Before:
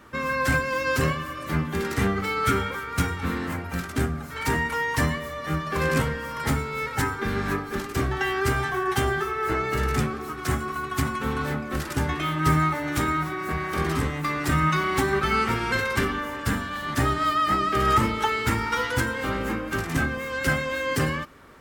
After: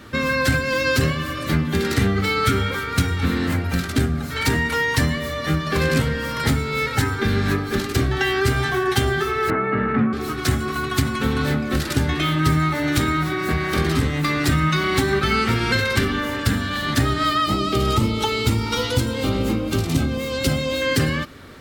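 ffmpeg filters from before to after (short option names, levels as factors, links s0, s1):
-filter_complex "[0:a]asettb=1/sr,asplit=3[s0][s1][s2];[s0]atrim=end=9.504[s3];[s1]atrim=start=9.5:end=10.13,asetpts=PTS-STARTPTS,afade=t=in:d=0.004:c=qsin,afade=t=out:st=0.626:d=0.004:c=qsin,highpass=f=110:w=0.5412,highpass=f=110:w=1.3066,equalizer=f=140:t=q:w=4:g=-9,equalizer=f=220:t=q:w=4:g=8,equalizer=f=350:t=q:w=4:g=-6,equalizer=f=1100:t=q:w=4:g=4,lowpass=f=2000:w=0.5412,lowpass=f=2000:w=1.3066[s4];[s2]atrim=start=10.126[s5];[s3][s4]acrossfade=d=0.004:c1=hsin:c2=qsin[s6];[s6][s5]acrossfade=d=0.004:c1=qsin:c2=hsin,asettb=1/sr,asplit=3[s7][s8][s9];[s7]atrim=end=17.464[s10];[s8]atrim=start=17.46:end=20.82,asetpts=PTS-STARTPTS,afade=t=in:d=0.004:c=qsin,afade=t=out:st=3.356:d=0.004:c=qsin,equalizer=f=1700:w=2.4:g=-14.5[s11];[s9]atrim=start=20.816[s12];[s10][s11]acrossfade=d=0.004:c1=hsin:c2=qsin[s13];[s13][s12]acrossfade=d=0.004:c1=qsin:c2=hsin,equalizer=f=100:t=o:w=0.67:g=7,equalizer=f=250:t=o:w=0.67:g=3,equalizer=f=1000:t=o:w=0.67:g=-6,equalizer=f=4000:t=o:w=0.67:g=7,acompressor=threshold=0.0562:ratio=2.5,volume=2.37"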